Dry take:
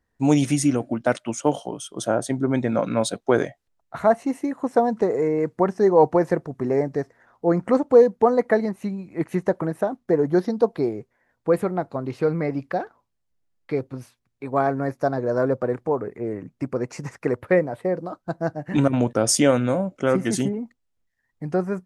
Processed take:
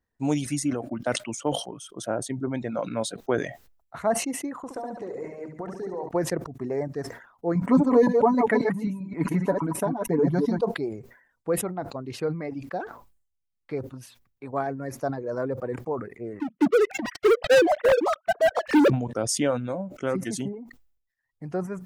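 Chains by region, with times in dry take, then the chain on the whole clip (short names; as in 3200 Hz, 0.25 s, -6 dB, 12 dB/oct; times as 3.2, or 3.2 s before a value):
4.58–6.09 de-hum 77.14 Hz, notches 6 + compressor 4:1, threshold -25 dBFS + flutter echo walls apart 11.9 m, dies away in 1.1 s
7.55–10.61 reverse delay 0.132 s, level -3.5 dB + comb 7 ms, depth 63% + small resonant body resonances 220/970/2200 Hz, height 12 dB
16.4–18.9 sine-wave speech + sample leveller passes 5
whole clip: reverb removal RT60 0.72 s; sustainer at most 95 dB/s; gain -6.5 dB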